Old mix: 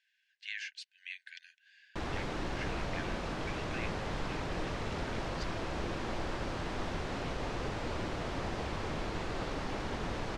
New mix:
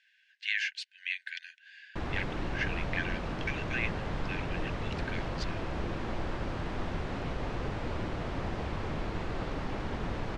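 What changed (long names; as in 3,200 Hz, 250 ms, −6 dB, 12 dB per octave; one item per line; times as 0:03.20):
speech +10.5 dB
master: add bass and treble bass +4 dB, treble −7 dB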